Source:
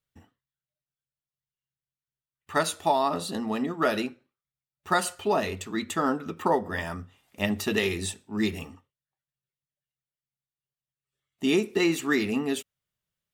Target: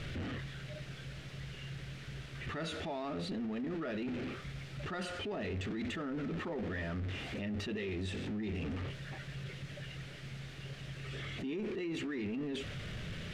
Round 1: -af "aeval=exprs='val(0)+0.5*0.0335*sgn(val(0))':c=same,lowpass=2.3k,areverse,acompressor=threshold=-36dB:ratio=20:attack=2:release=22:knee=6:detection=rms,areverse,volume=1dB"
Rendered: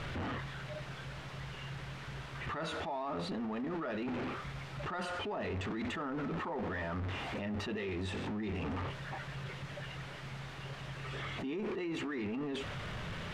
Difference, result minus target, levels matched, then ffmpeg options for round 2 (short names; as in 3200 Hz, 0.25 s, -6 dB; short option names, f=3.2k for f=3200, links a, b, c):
1000 Hz band +6.0 dB
-af "aeval=exprs='val(0)+0.5*0.0335*sgn(val(0))':c=same,lowpass=2.3k,equalizer=f=960:w=1.4:g=-14.5,areverse,acompressor=threshold=-36dB:ratio=20:attack=2:release=22:knee=6:detection=rms,areverse,volume=1dB"